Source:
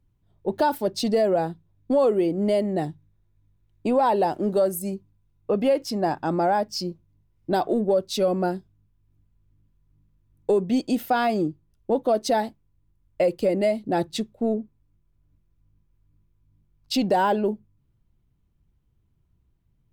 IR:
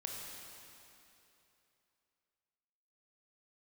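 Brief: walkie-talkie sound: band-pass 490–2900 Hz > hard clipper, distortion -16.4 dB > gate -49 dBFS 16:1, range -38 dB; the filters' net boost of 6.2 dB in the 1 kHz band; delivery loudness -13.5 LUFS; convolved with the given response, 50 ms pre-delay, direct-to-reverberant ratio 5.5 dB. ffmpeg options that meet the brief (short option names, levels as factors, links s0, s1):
-filter_complex "[0:a]equalizer=f=1000:t=o:g=9,asplit=2[s0][s1];[1:a]atrim=start_sample=2205,adelay=50[s2];[s1][s2]afir=irnorm=-1:irlink=0,volume=0.562[s3];[s0][s3]amix=inputs=2:normalize=0,highpass=490,lowpass=2900,asoftclip=type=hard:threshold=0.237,agate=range=0.0126:threshold=0.00355:ratio=16,volume=2.99"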